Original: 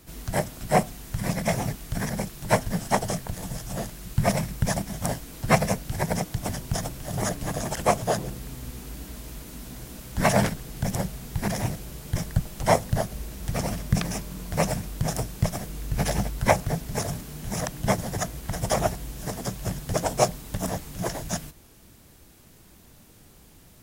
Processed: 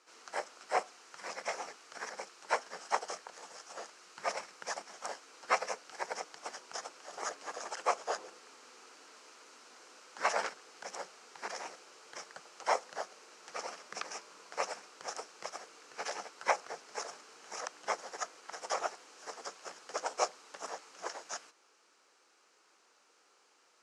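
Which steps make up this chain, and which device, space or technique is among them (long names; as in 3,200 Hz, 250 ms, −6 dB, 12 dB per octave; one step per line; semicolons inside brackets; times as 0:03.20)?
phone speaker on a table (loudspeaker in its box 470–6,700 Hz, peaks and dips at 640 Hz −8 dB, 1,300 Hz +6 dB, 1,900 Hz −3 dB, 3,500 Hz −7 dB)
level −6.5 dB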